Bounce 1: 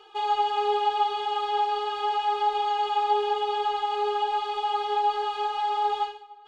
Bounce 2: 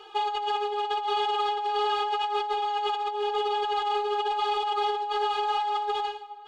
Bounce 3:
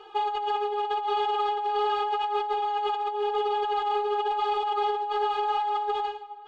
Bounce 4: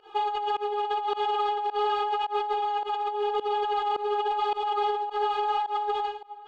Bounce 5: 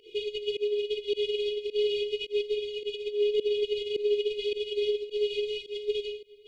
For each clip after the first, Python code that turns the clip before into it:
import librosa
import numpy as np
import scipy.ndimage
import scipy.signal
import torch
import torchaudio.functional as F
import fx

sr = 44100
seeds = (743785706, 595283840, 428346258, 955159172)

y1 = fx.over_compress(x, sr, threshold_db=-29.0, ratio=-1.0)
y1 = y1 * 10.0 ** (1.5 / 20.0)
y2 = fx.high_shelf(y1, sr, hz=2800.0, db=-11.0)
y2 = y2 * 10.0 ** (1.5 / 20.0)
y3 = fx.volume_shaper(y2, sr, bpm=106, per_beat=1, depth_db=-23, release_ms=109.0, shape='fast start')
y4 = fx.brickwall_bandstop(y3, sr, low_hz=510.0, high_hz=2100.0)
y4 = y4 * 10.0 ** (4.0 / 20.0)